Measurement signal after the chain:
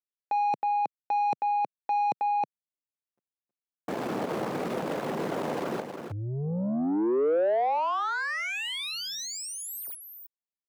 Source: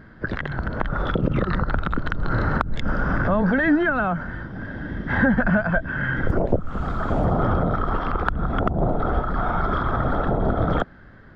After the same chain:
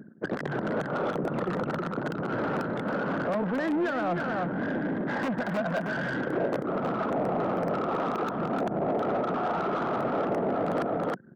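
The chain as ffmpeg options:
ffmpeg -i in.wav -filter_complex "[0:a]aeval=exprs='(mod(3.35*val(0)+1,2)-1)/3.35':channel_layout=same,alimiter=limit=-17.5dB:level=0:latency=1:release=134,acrossover=split=3700[link_01][link_02];[link_02]acompressor=threshold=-38dB:ratio=4:attack=1:release=60[link_03];[link_01][link_03]amix=inputs=2:normalize=0,anlmdn=1.58,highpass=frequency=150:width=0.5412,highpass=frequency=150:width=1.3066,highshelf=frequency=2700:gain=-7,aecho=1:1:318:0.355,areverse,acompressor=threshold=-38dB:ratio=4,areverse,asoftclip=type=tanh:threshold=-39.5dB,equalizer=frequency=500:width_type=o:width=2.6:gain=11,volume=7.5dB" out.wav

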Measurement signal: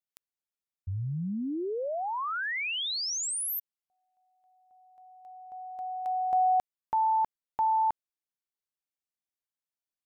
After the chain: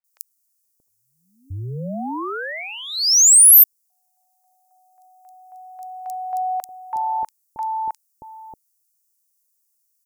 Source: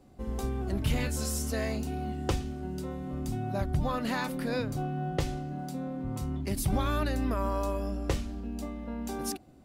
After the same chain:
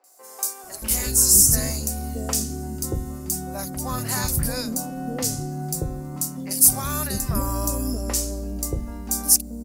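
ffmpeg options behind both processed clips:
ffmpeg -i in.wav -filter_complex "[0:a]acrossover=split=550|2800[link_01][link_02][link_03];[link_03]adelay=40[link_04];[link_01]adelay=630[link_05];[link_05][link_02][link_04]amix=inputs=3:normalize=0,aexciter=amount=4.1:drive=9.8:freq=5000,volume=3.5dB" out.wav

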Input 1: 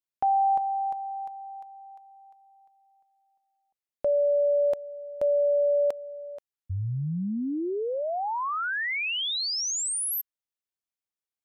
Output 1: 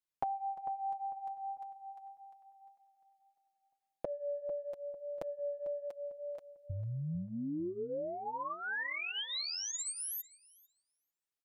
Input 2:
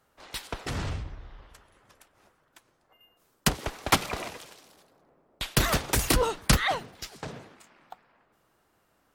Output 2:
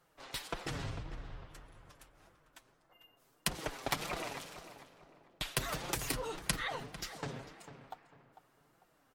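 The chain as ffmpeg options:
ffmpeg -i in.wav -filter_complex "[0:a]acompressor=threshold=-39dB:ratio=8:attack=52:release=54:knee=6:detection=peak,flanger=delay=5.5:depth=2.3:regen=-5:speed=1.7:shape=triangular,asplit=2[link_01][link_02];[link_02]adelay=448,lowpass=frequency=2500:poles=1,volume=-12dB,asplit=2[link_03][link_04];[link_04]adelay=448,lowpass=frequency=2500:poles=1,volume=0.32,asplit=2[link_05][link_06];[link_06]adelay=448,lowpass=frequency=2500:poles=1,volume=0.32[link_07];[link_03][link_05][link_07]amix=inputs=3:normalize=0[link_08];[link_01][link_08]amix=inputs=2:normalize=0,volume=1dB" out.wav

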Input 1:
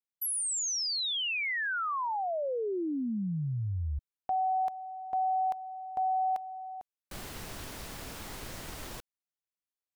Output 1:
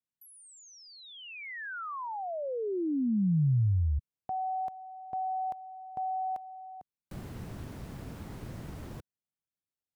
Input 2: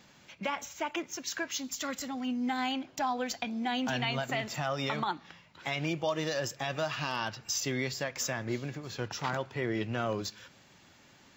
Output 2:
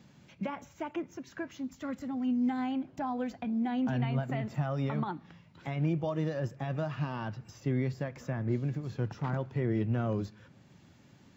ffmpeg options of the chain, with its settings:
ffmpeg -i in.wav -filter_complex "[0:a]equalizer=frequency=130:width=0.37:gain=15,acrossover=split=2300[link_01][link_02];[link_02]acompressor=threshold=-47dB:ratio=6:attack=2.9:release=429:detection=rms[link_03];[link_01][link_03]amix=inputs=2:normalize=0,volume=-7.5dB" out.wav

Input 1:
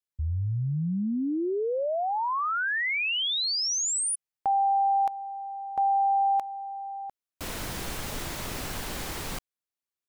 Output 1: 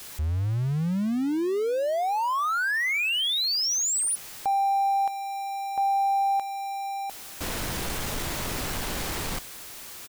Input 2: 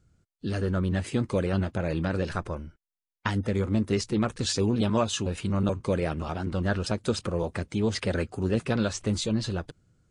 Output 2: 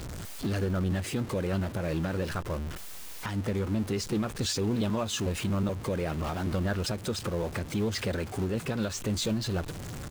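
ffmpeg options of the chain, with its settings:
ffmpeg -i in.wav -filter_complex "[0:a]aeval=exprs='val(0)+0.5*0.0237*sgn(val(0))':channel_layout=same,alimiter=limit=-20.5dB:level=0:latency=1:release=313,asplit=2[link_01][link_02];[link_02]adelay=443.1,volume=-29dB,highshelf=frequency=4000:gain=-9.97[link_03];[link_01][link_03]amix=inputs=2:normalize=0" out.wav

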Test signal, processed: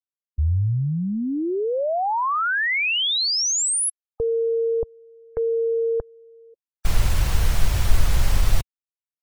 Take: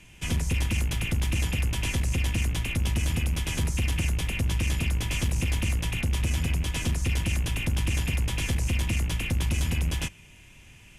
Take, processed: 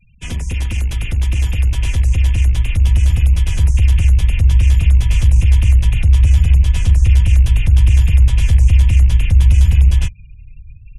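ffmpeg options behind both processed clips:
ffmpeg -i in.wav -af "afftfilt=real='re*gte(hypot(re,im),0.00891)':imag='im*gte(hypot(re,im),0.00891)':win_size=1024:overlap=0.75,asubboost=boost=10:cutoff=84,volume=2.5dB" out.wav

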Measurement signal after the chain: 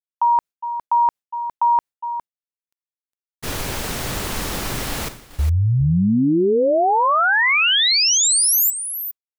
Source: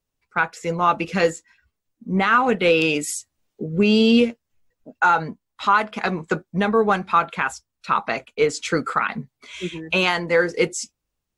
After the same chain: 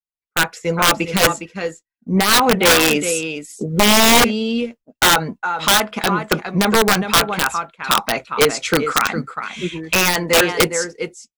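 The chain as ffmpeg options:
ffmpeg -i in.wav -af "aecho=1:1:409:0.316,agate=range=-33dB:threshold=-32dB:ratio=3:detection=peak,aeval=exprs='(mod(3.35*val(0)+1,2)-1)/3.35':channel_layout=same,volume=4.5dB" out.wav

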